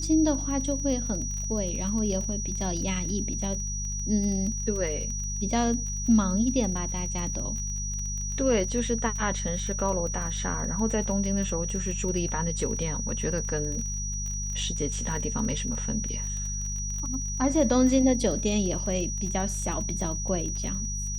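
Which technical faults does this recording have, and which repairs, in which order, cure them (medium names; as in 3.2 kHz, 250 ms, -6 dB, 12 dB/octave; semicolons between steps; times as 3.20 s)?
crackle 30 per s -33 dBFS
hum 50 Hz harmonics 4 -33 dBFS
whine 5.8 kHz -33 dBFS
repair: de-click; band-stop 5.8 kHz, Q 30; de-hum 50 Hz, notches 4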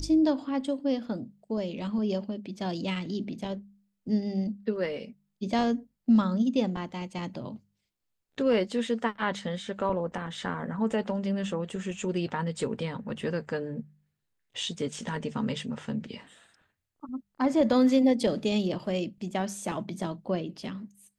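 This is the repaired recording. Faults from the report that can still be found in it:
nothing left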